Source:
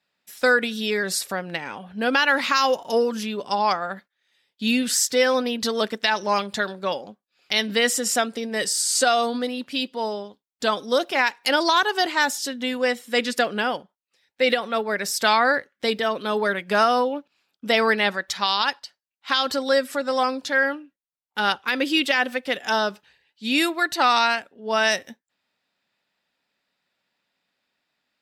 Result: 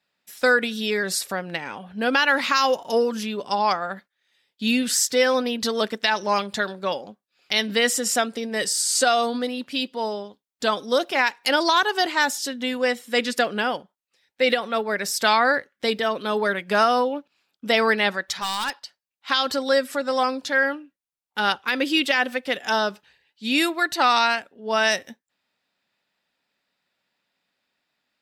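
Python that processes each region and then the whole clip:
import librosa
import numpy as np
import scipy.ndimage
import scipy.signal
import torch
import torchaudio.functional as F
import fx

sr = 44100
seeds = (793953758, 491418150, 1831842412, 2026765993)

y = fx.chain(x, sr, fx.highpass(hz=270.0, slope=6),
    fx.overload_stage(gain_db=22.0), at=(18.39, 18.83))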